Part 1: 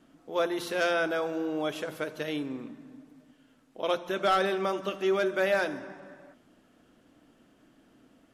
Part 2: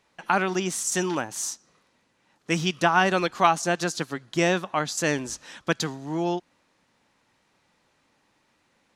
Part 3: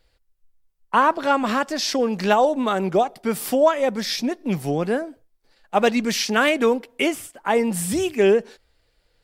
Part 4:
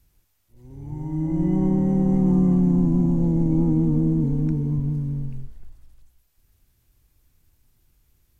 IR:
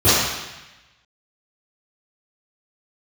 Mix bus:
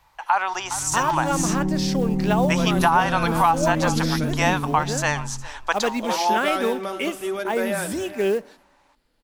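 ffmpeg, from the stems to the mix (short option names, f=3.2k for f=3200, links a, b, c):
-filter_complex "[0:a]equalizer=f=11k:t=o:w=0.57:g=14,adelay=2200,volume=-1dB,asplit=2[a][b];[b]volume=-14.5dB[c];[1:a]highpass=f=880:t=q:w=3.9,volume=2dB,asplit=2[d][e];[e]volume=-19dB[f];[2:a]acrusher=bits=6:mode=log:mix=0:aa=0.000001,volume=-5.5dB,asplit=2[g][h];[3:a]volume=-3.5dB[i];[h]apad=whole_len=464478[j];[a][j]sidechaingate=range=-33dB:threshold=-52dB:ratio=16:detection=peak[k];[c][f]amix=inputs=2:normalize=0,aecho=0:1:411:1[l];[k][d][g][i][l]amix=inputs=5:normalize=0,alimiter=limit=-7.5dB:level=0:latency=1:release=281"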